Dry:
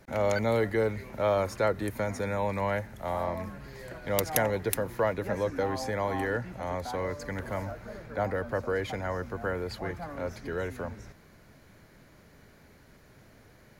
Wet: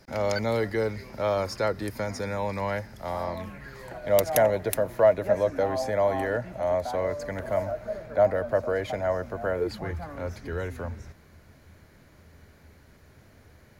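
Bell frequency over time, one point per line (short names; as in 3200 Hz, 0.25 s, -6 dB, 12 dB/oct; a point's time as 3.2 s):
bell +14.5 dB 0.29 oct
3.28 s 5000 Hz
4.01 s 630 Hz
9.55 s 630 Hz
9.95 s 79 Hz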